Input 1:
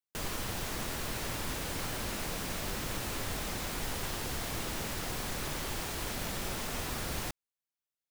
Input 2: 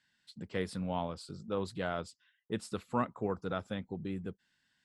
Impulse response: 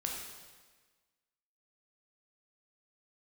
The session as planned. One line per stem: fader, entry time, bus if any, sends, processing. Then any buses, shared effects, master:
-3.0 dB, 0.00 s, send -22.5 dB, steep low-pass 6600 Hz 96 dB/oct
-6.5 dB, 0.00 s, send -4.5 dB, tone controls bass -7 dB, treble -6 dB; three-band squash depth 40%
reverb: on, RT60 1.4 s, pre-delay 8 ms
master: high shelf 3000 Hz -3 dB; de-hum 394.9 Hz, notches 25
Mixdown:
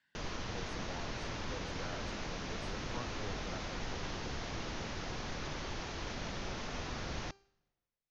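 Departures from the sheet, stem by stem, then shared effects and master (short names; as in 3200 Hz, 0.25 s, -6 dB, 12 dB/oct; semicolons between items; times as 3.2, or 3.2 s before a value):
stem 2 -6.5 dB -> -13.5 dB; reverb return -7.5 dB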